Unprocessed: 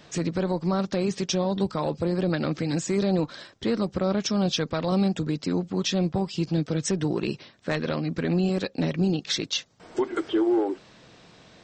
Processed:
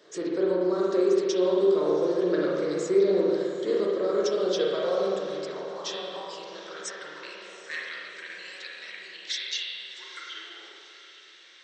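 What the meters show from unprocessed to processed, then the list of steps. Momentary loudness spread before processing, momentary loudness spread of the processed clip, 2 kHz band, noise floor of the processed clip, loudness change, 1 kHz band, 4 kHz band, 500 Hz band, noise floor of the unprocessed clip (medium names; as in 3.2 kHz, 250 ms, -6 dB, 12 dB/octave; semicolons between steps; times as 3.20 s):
5 LU, 17 LU, -0.5 dB, -51 dBFS, 0.0 dB, -4.0 dB, -2.5 dB, +3.5 dB, -54 dBFS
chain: graphic EQ with 31 bands 160 Hz -4 dB, 250 Hz -9 dB, 400 Hz +3 dB, 800 Hz -11 dB, 2.5 kHz -8 dB; high-pass sweep 390 Hz -> 2.2 kHz, 4.36–7.86 s; on a send: echo that smears into a reverb 766 ms, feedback 57%, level -14 dB; on the sum: spring tank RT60 1.8 s, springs 33/46 ms, chirp 40 ms, DRR -4 dB; trim -6.5 dB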